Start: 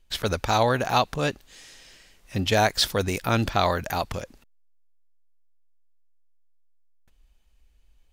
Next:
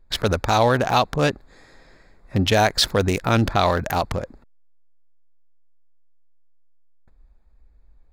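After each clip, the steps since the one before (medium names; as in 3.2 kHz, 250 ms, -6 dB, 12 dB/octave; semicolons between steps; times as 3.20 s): local Wiener filter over 15 samples; in parallel at +1.5 dB: peak limiter -17.5 dBFS, peak gain reduction 11 dB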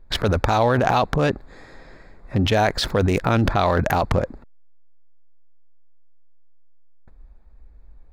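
in parallel at -1 dB: compressor with a negative ratio -24 dBFS, ratio -0.5; on the sum: treble shelf 3.5 kHz -9.5 dB; trim -1.5 dB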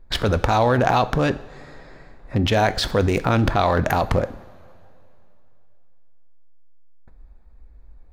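two-slope reverb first 0.51 s, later 2.9 s, from -16 dB, DRR 12 dB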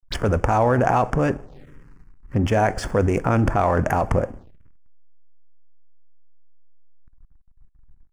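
hysteresis with a dead band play -36 dBFS; touch-sensitive phaser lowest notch 450 Hz, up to 3.9 kHz, full sweep at -22.5 dBFS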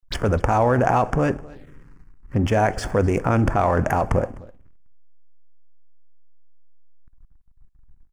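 delay 255 ms -22.5 dB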